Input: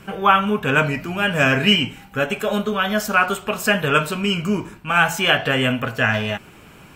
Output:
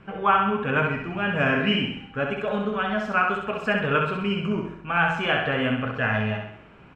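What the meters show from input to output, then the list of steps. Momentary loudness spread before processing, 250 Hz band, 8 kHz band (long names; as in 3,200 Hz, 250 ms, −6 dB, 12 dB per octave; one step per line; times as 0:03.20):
7 LU, −4.0 dB, below −20 dB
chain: low-pass filter 2,300 Hz 12 dB per octave
on a send: repeating echo 65 ms, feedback 50%, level −4.5 dB
on the sum: level −5.5 dB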